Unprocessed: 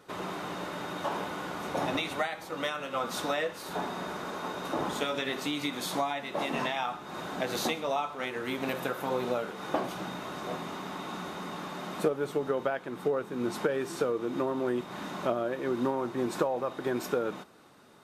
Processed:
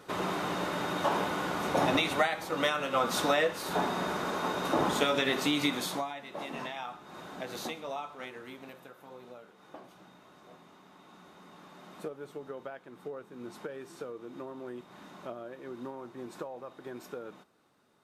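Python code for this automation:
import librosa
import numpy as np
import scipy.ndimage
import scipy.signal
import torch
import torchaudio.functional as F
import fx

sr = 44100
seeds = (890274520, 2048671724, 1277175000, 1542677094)

y = fx.gain(x, sr, db=fx.line((5.71, 4.0), (6.12, -7.5), (8.23, -7.5), (8.84, -18.5), (10.9, -18.5), (11.99, -12.0)))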